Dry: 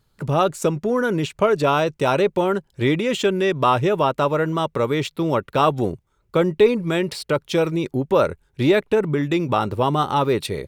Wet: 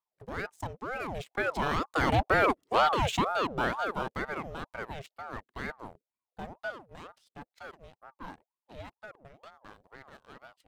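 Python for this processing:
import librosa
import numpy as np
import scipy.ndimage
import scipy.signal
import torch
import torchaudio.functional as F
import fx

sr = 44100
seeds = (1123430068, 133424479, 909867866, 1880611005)

y = fx.doppler_pass(x, sr, speed_mps=10, closest_m=2.7, pass_at_s=2.57)
y = fx.leveller(y, sr, passes=2)
y = fx.ring_lfo(y, sr, carrier_hz=670.0, swing_pct=60, hz=2.1)
y = F.gain(torch.from_numpy(y), -4.5).numpy()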